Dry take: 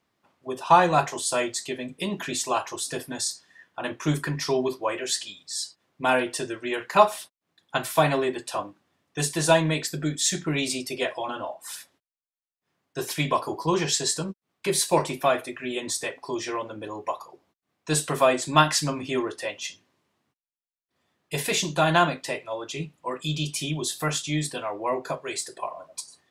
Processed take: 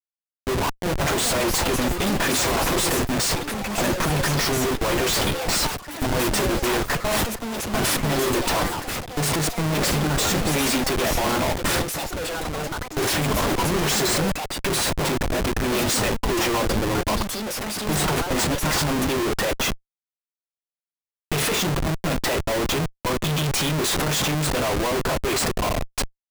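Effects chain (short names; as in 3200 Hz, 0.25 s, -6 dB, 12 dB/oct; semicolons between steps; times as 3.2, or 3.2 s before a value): negative-ratio compressor -27 dBFS, ratio -0.5; Schmitt trigger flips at -33 dBFS; echoes that change speed 0.647 s, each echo +6 st, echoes 3, each echo -6 dB; gain +8 dB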